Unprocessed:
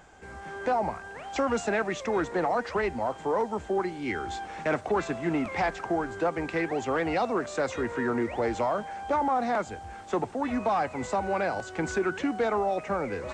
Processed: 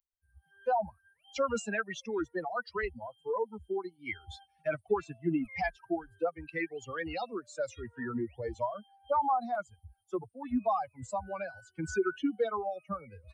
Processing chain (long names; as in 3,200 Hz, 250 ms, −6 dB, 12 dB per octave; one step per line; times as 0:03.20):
spectral dynamics exaggerated over time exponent 3
level +2.5 dB